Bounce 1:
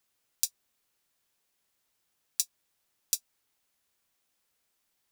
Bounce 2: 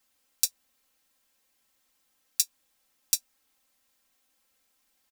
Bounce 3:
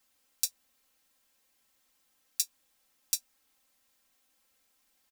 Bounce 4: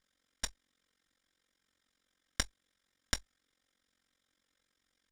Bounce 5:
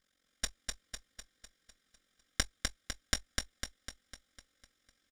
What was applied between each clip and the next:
comb 3.8 ms, depth 95%; trim +2 dB
peak limiter -7 dBFS, peak gain reduction 5.5 dB
comb filter that takes the minimum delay 0.57 ms; AM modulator 45 Hz, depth 85%; distance through air 73 m; trim +3.5 dB
Butterworth band-stop 940 Hz, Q 4.3; on a send: feedback delay 251 ms, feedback 53%, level -3.5 dB; on the sum: trim +1.5 dB

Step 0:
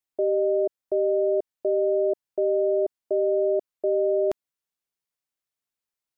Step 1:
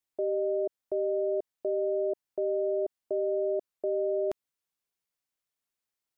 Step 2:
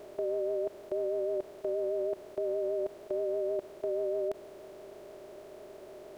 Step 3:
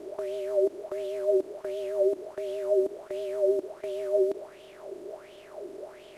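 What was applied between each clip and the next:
peak limiter -22.5 dBFS, peak gain reduction 6.5 dB
spectral levelling over time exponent 0.2; vibrato 6.3 Hz 43 cents; trim -3.5 dB
CVSD coder 64 kbps; sweeping bell 1.4 Hz 300–3200 Hz +16 dB; trim -1.5 dB

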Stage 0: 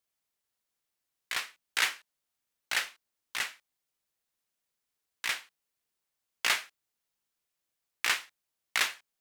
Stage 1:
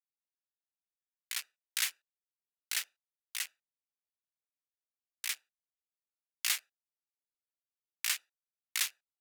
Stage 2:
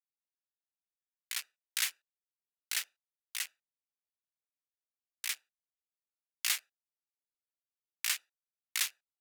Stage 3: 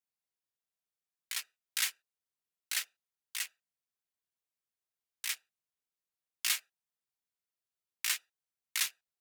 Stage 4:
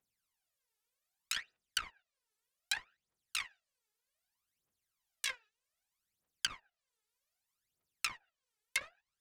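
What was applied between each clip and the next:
local Wiener filter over 41 samples; differentiator; in parallel at -3 dB: peak limiter -27.5 dBFS, peak gain reduction 10 dB
no audible change
comb of notches 290 Hz; trim +1.5 dB
Chebyshev shaper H 5 -19 dB, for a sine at -15.5 dBFS; phaser 0.64 Hz, delay 2.4 ms, feedback 79%; low-pass that closes with the level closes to 660 Hz, closed at -23 dBFS; trim -1.5 dB

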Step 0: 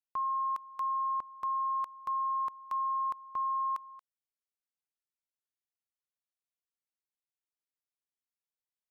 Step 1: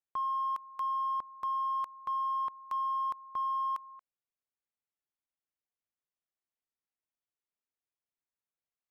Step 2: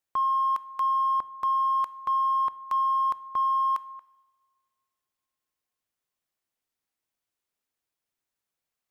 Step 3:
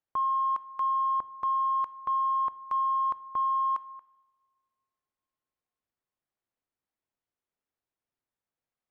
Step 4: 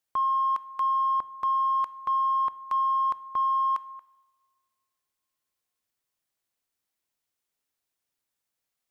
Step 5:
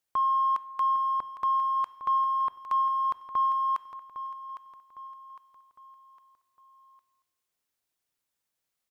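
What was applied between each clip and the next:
local Wiener filter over 9 samples
two-slope reverb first 0.88 s, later 2.6 s, from -19 dB, DRR 16.5 dB; trim +7.5 dB
low-pass 1.2 kHz 6 dB/octave
treble shelf 2.2 kHz +11.5 dB
feedback delay 807 ms, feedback 43%, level -11.5 dB

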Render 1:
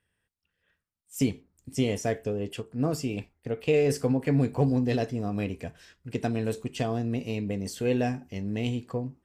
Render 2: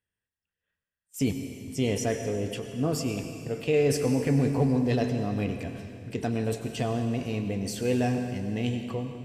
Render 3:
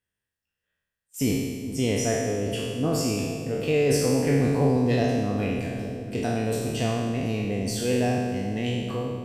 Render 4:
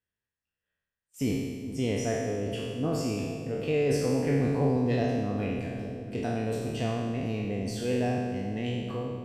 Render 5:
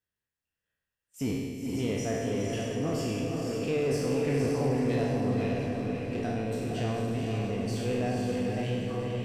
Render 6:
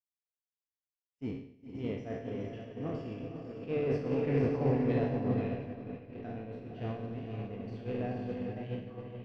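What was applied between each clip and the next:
gate -48 dBFS, range -12 dB; transient shaper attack -2 dB, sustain +4 dB; reverberation RT60 2.4 s, pre-delay 86 ms, DRR 6.5 dB
spectral sustain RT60 1.41 s; bucket-brigade echo 416 ms, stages 2048, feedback 72%, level -13 dB
treble shelf 5.4 kHz -9.5 dB; trim -4 dB
echo that smears into a reverb 491 ms, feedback 45%, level -3 dB; in parallel at -6.5 dB: overload inside the chain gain 29.5 dB; on the sum: trim -4.5 dB
treble shelf 11 kHz -5.5 dB; expander -20 dBFS; distance through air 310 m; trim +6 dB

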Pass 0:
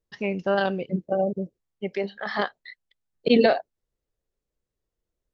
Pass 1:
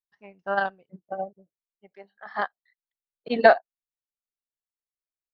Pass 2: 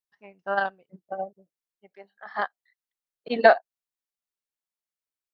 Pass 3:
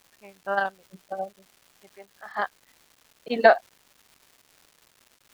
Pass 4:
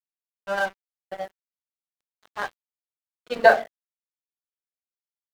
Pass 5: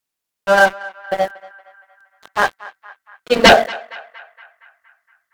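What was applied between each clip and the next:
high-order bell 1.1 kHz +10.5 dB; upward expansion 2.5:1, over -29 dBFS
bass shelf 180 Hz -6 dB
crackle 490 per s -44 dBFS
reverberation RT60 0.40 s, pre-delay 5 ms, DRR 4 dB; crossover distortion -33 dBFS; trim -1 dB
sine folder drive 12 dB, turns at -1 dBFS; band-passed feedback delay 233 ms, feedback 62%, band-pass 1.5 kHz, level -17.5 dB; trim -1 dB

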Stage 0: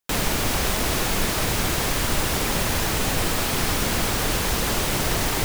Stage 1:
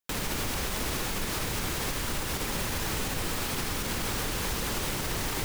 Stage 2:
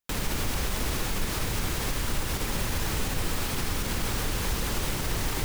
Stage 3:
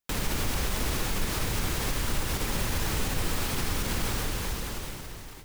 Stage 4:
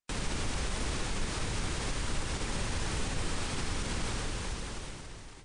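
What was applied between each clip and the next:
peaking EQ 670 Hz -4.5 dB 0.29 oct; peak limiter -15 dBFS, peak gain reduction 6 dB; trim -6 dB
bass shelf 110 Hz +7 dB
fade out at the end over 1.42 s; reverse; upward compressor, threshold -37 dBFS; reverse
trim -4 dB; MP3 80 kbps 22.05 kHz

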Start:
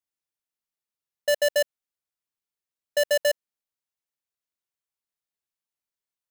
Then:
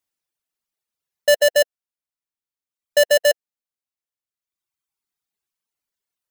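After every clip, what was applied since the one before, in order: reverb removal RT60 1.5 s; trim +8 dB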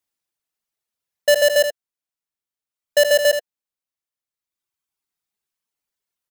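delay 78 ms -8.5 dB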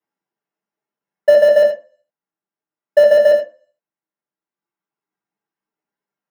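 reverberation RT60 0.40 s, pre-delay 3 ms, DRR -7.5 dB; trim -14.5 dB

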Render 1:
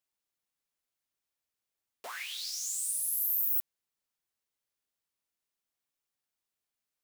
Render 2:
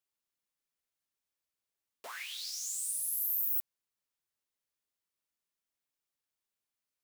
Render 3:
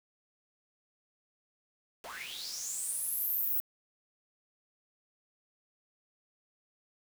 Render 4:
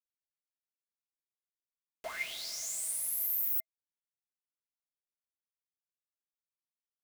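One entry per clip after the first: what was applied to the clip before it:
band-stop 740 Hz, Q 18; trim -2.5 dB
send-on-delta sampling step -43.5 dBFS
small resonant body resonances 650/2100 Hz, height 16 dB, ringing for 75 ms

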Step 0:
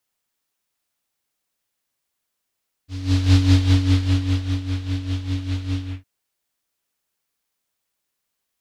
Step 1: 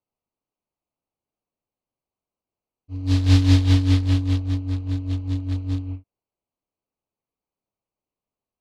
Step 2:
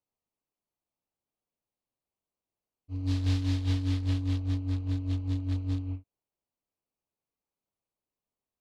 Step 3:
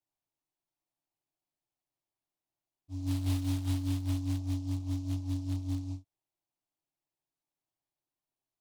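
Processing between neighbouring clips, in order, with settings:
local Wiener filter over 25 samples; band-stop 1.4 kHz, Q 13
compression 10:1, threshold -20 dBFS, peak gain reduction 11 dB; trim -4 dB
static phaser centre 320 Hz, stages 8; delay time shaken by noise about 4.8 kHz, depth 0.041 ms

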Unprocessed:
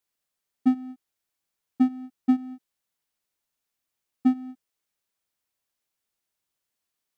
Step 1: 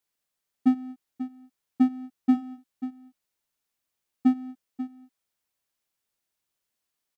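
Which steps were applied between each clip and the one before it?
delay 539 ms -12.5 dB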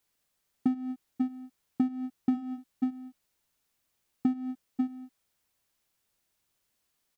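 bass shelf 180 Hz +5.5 dB; in parallel at -2 dB: peak limiter -16 dBFS, peak gain reduction 7 dB; on the sum: compression 10:1, threshold -24 dBFS, peak gain reduction 13.5 dB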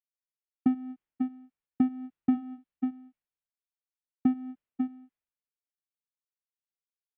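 low-pass 2.8 kHz 24 dB/octave; three bands expanded up and down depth 100%; trim -3 dB

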